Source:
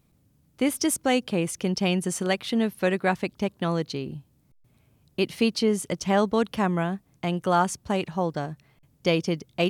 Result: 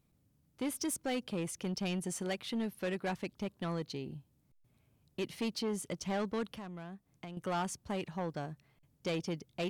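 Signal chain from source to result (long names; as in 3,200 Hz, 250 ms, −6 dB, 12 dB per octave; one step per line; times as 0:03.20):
soft clipping −21 dBFS, distortion −12 dB
0:06.50–0:07.37: downward compressor 3 to 1, threshold −38 dBFS, peak gain reduction 10.5 dB
level −8.5 dB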